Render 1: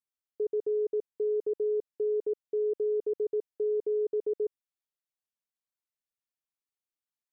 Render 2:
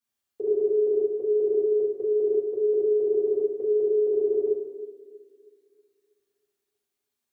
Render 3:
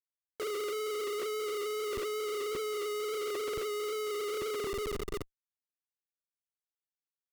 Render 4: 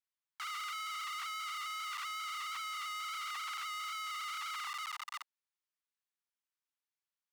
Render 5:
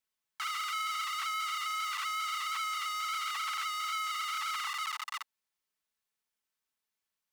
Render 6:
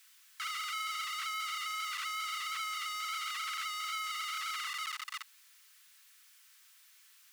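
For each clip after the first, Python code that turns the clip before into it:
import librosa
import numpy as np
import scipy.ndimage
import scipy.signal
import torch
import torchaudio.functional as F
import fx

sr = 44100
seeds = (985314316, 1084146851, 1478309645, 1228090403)

y1 = fx.echo_banded(x, sr, ms=320, feedback_pct=43, hz=320.0, wet_db=-14.5)
y1 = fx.rev_fdn(y1, sr, rt60_s=0.97, lf_ratio=0.85, hf_ratio=0.95, size_ms=25.0, drr_db=-9.5)
y2 = fx.schmitt(y1, sr, flips_db=-43.5)
y2 = fx.wow_flutter(y2, sr, seeds[0], rate_hz=2.1, depth_cents=25.0)
y2 = F.gain(torch.from_numpy(y2), -9.0).numpy()
y3 = scipy.signal.sosfilt(scipy.signal.butter(12, 830.0, 'highpass', fs=sr, output='sos'), y2)
y3 = fx.high_shelf(y3, sr, hz=7700.0, db=-11.5)
y3 = F.gain(torch.from_numpy(y3), 2.5).numpy()
y4 = y3 + 0.37 * np.pad(y3, (int(4.6 * sr / 1000.0), 0))[:len(y3)]
y4 = F.gain(torch.from_numpy(y4), 5.0).numpy()
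y5 = y4 + 0.5 * 10.0 ** (-52.0 / 20.0) * np.sign(y4)
y5 = scipy.signal.sosfilt(scipy.signal.butter(4, 1300.0, 'highpass', fs=sr, output='sos'), y5)
y5 = F.gain(torch.from_numpy(y5), -1.5).numpy()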